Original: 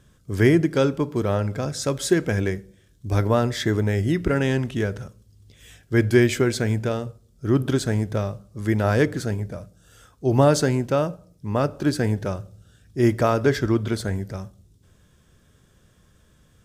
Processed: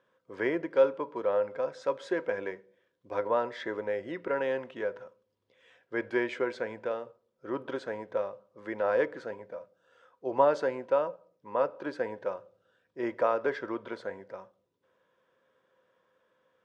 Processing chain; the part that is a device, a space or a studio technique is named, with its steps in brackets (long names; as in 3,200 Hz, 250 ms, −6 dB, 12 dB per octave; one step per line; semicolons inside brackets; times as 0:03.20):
tin-can telephone (band-pass filter 500–2,200 Hz; hollow resonant body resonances 520/970 Hz, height 14 dB, ringing for 90 ms)
level −6.5 dB